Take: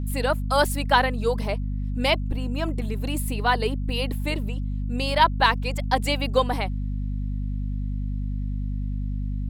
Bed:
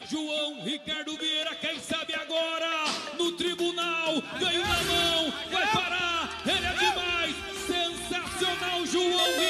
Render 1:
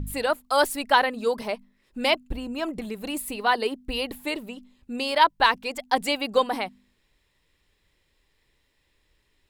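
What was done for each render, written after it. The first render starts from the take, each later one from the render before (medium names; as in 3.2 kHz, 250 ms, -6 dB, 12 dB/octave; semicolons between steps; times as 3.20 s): de-hum 50 Hz, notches 5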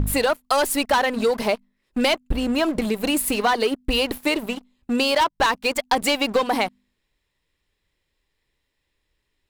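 waveshaping leveller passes 3; compression 6:1, threshold -17 dBFS, peak gain reduction 8.5 dB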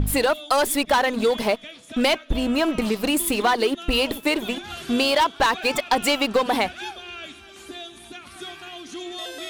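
add bed -9 dB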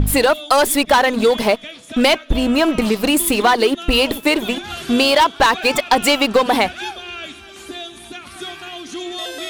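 trim +6 dB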